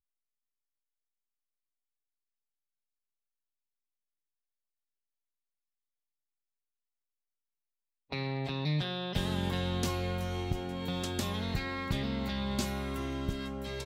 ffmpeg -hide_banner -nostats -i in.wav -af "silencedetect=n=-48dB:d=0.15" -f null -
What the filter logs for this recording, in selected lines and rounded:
silence_start: 0.00
silence_end: 8.12 | silence_duration: 8.12